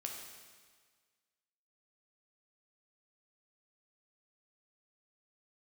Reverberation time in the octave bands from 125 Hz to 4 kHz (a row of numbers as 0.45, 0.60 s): 1.6, 1.6, 1.6, 1.6, 1.6, 1.6 s